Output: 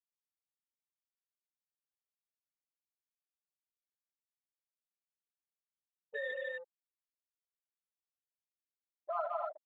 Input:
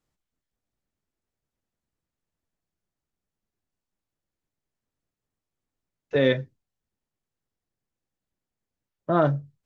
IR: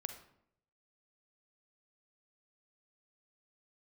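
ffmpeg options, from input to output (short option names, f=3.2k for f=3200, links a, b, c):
-filter_complex "[0:a]highpass=f=710:w=0.5412,highpass=f=710:w=1.3066,aecho=1:1:157.4|244.9:0.708|0.631[a];[1:a]atrim=start_sample=2205,afade=t=out:st=0.3:d=0.01,atrim=end_sample=13671,asetrate=57330,aresample=44100[b];[a][b]afir=irnorm=-1:irlink=0,acompressor=threshold=-48dB:ratio=2,afftfilt=real='re*gte(hypot(re,im),0.0282)':imag='im*gte(hypot(re,im),0.0282)':win_size=1024:overlap=0.75,asuperstop=centerf=2200:order=4:qfactor=3.4,afwtdn=0.00141,equalizer=f=3.4k:w=1.4:g=7,volume=6dB"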